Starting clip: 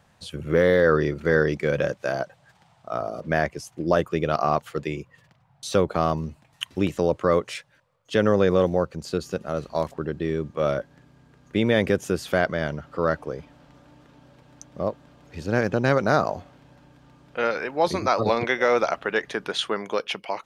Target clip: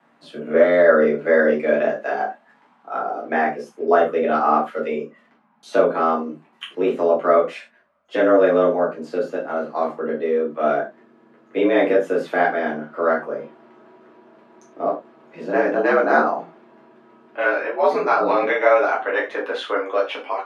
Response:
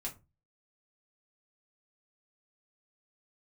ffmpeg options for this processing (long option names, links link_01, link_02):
-filter_complex "[0:a]acrossover=split=170 2600:gain=0.178 1 0.141[link_01][link_02][link_03];[link_01][link_02][link_03]amix=inputs=3:normalize=0,afreqshift=79[link_04];[1:a]atrim=start_sample=2205,atrim=end_sample=3087,asetrate=26019,aresample=44100[link_05];[link_04][link_05]afir=irnorm=-1:irlink=0,volume=2dB"